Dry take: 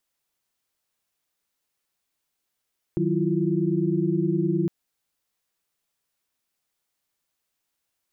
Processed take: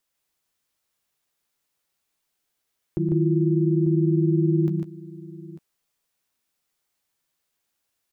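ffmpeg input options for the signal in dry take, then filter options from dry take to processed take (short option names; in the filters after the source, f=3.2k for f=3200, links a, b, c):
-f lavfi -i "aevalsrc='0.0501*(sin(2*PI*155.56*t)+sin(2*PI*185*t)+sin(2*PI*329.63*t)+sin(2*PI*349.23*t))':d=1.71:s=44100"
-filter_complex "[0:a]asplit=2[a][b];[b]adelay=13,volume=-12dB[c];[a][c]amix=inputs=2:normalize=0,aecho=1:1:117|149|895:0.211|0.631|0.158"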